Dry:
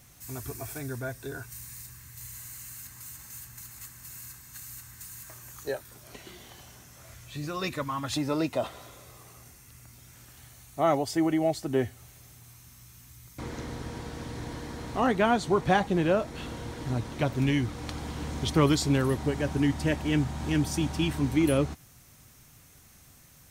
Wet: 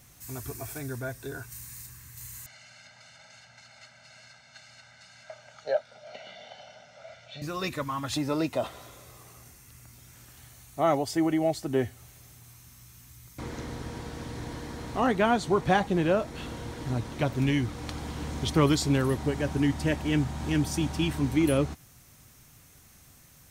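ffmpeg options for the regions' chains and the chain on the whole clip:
ffmpeg -i in.wav -filter_complex "[0:a]asettb=1/sr,asplit=3[link_01][link_02][link_03];[link_01]atrim=end=2.464[link_04];[link_02]atrim=start=2.46:end=7.42,asetpts=PTS-STARTPTS,afade=type=in:duration=0.004:curve=qsin,afade=type=out:start_time=4.956:duration=0.004:curve=qsin,highpass=280,equalizer=frequency=300:width_type=q:width=4:gain=-7,equalizer=frequency=620:width_type=q:width=4:gain=10,equalizer=frequency=1100:width_type=q:width=4:gain=-5,lowpass=frequency=4700:width=0.5412,lowpass=frequency=4700:width=1.3066,aecho=1:1:1.4:0.94,atrim=end_sample=218736[link_05];[link_03]atrim=start=7.416[link_06];[link_04][link_05]acrossfade=duration=0.004:curve1=hsin:curve2=qsin[link_07];[link_07][link_06]acrossfade=duration=0.004:curve1=qsin:curve2=hsin" out.wav

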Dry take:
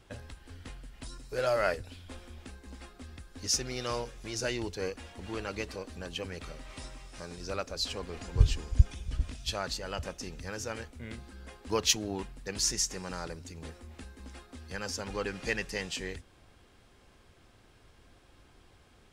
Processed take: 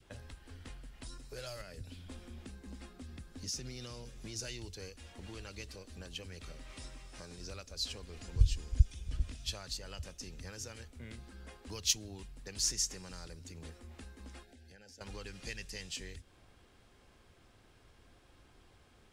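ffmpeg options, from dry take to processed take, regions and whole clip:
ffmpeg -i in.wav -filter_complex "[0:a]asettb=1/sr,asplit=3[link_01][link_02][link_03];[link_01]atrim=end=1.614[link_04];[link_02]atrim=start=1.61:end=4.39,asetpts=PTS-STARTPTS,afade=type=in:duration=0.004:curve=qsin,afade=type=out:start_time=2.776:duration=0.004:curve=qsin,equalizer=frequency=190:width_type=o:width=1.5:gain=8.5,acompressor=threshold=-31dB:ratio=6:attack=3.2:release=140:knee=1:detection=peak[link_05];[link_03]atrim=start=4.386[link_06];[link_04][link_05]acrossfade=duration=0.004:curve1=hsin:curve2=qsin[link_07];[link_07][link_06]acrossfade=duration=0.004:curve1=qsin:curve2=hsin,asettb=1/sr,asplit=3[link_08][link_09][link_10];[link_08]atrim=end=14.434[link_11];[link_09]atrim=start=14.43:end=15.01,asetpts=PTS-STARTPTS,afade=type=in:duration=0.004:curve=qsin,afade=type=out:start_time=0.576:duration=0.004:curve=qsin,acompressor=threshold=-52dB:ratio=5:attack=3.2:release=140:knee=1:detection=peak,asuperstop=centerf=1100:order=8:qfactor=1.9[link_12];[link_10]atrim=start=15.006[link_13];[link_11][link_12]acrossfade=duration=0.004:curve1=hsin:curve2=qsin[link_14];[link_14][link_13]acrossfade=duration=0.004:curve1=qsin:curve2=hsin,acrossover=split=120|3000[link_15][link_16][link_17];[link_16]acompressor=threshold=-45dB:ratio=4[link_18];[link_15][link_18][link_17]amix=inputs=3:normalize=0,adynamicequalizer=threshold=0.00141:dfrequency=890:dqfactor=1:tfrequency=890:tqfactor=1:attack=5:release=100:ratio=0.375:range=2:mode=cutabove:tftype=bell,volume=-3dB" out.wav

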